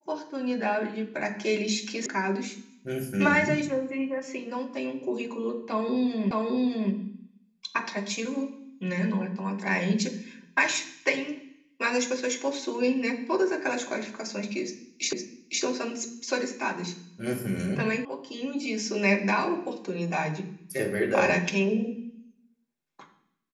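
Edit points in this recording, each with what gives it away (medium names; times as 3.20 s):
2.06 s: sound stops dead
6.31 s: repeat of the last 0.61 s
15.13 s: repeat of the last 0.51 s
18.05 s: sound stops dead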